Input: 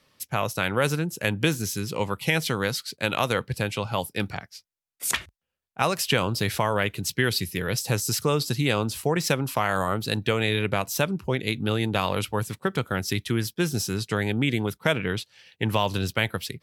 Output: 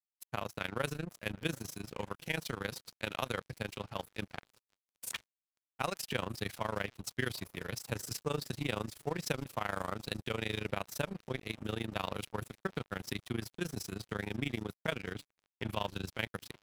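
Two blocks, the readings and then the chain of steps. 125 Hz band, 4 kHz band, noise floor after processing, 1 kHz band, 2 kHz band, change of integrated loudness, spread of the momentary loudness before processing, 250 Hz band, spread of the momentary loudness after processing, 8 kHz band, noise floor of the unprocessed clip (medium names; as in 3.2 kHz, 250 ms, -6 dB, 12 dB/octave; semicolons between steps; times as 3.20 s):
-14.0 dB, -13.0 dB, under -85 dBFS, -12.5 dB, -12.0 dB, -13.0 dB, 5 LU, -12.5 dB, 6 LU, -14.5 dB, -80 dBFS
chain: shuffle delay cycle 1261 ms, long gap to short 1.5:1, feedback 52%, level -21.5 dB; crossover distortion -35 dBFS; AM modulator 26 Hz, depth 85%; trim -7 dB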